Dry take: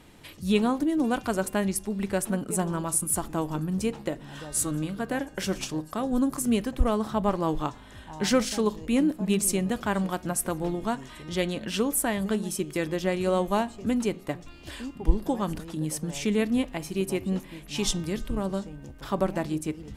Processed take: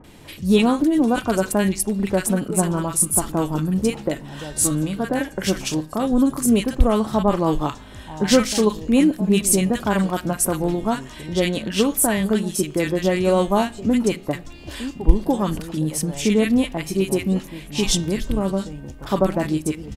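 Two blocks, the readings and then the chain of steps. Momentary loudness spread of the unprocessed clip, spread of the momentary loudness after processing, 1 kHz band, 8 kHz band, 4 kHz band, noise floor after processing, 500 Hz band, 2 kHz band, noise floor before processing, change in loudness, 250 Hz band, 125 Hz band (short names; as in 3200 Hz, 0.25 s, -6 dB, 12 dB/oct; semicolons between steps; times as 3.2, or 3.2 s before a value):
9 LU, 10 LU, +6.0 dB, +7.5 dB, +7.5 dB, -40 dBFS, +7.5 dB, +6.0 dB, -47 dBFS, +7.5 dB, +7.5 dB, +7.5 dB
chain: bands offset in time lows, highs 40 ms, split 1300 Hz; gain +7.5 dB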